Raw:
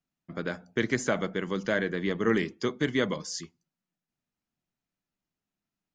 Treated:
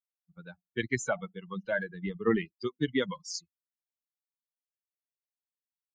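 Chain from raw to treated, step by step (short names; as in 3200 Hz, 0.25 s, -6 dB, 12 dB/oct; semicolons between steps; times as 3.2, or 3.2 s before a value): per-bin expansion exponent 3; gain +2.5 dB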